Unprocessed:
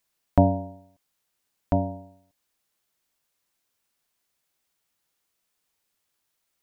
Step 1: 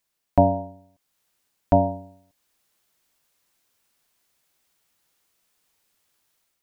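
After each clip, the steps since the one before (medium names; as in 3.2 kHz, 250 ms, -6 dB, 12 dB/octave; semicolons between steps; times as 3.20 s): dynamic bell 830 Hz, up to +7 dB, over -36 dBFS, Q 0.83; level rider gain up to 7.5 dB; trim -1 dB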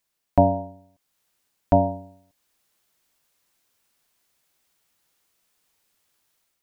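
no audible change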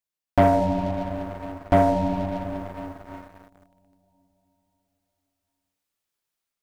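on a send at -4 dB: reverberation RT60 4.9 s, pre-delay 10 ms; on the sum: waveshaping leveller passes 3; trim -7.5 dB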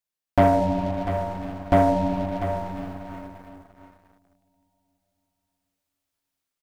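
delay 695 ms -10 dB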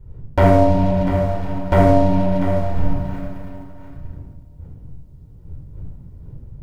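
wind noise 100 Hz -39 dBFS; simulated room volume 3400 m³, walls furnished, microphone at 4.6 m; trim +1 dB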